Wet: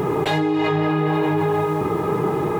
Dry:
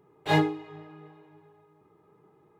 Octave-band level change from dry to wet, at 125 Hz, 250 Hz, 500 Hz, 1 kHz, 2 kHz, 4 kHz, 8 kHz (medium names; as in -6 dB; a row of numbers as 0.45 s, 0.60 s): +11.5 dB, +12.0 dB, +16.0 dB, +11.5 dB, +8.0 dB, +7.0 dB, no reading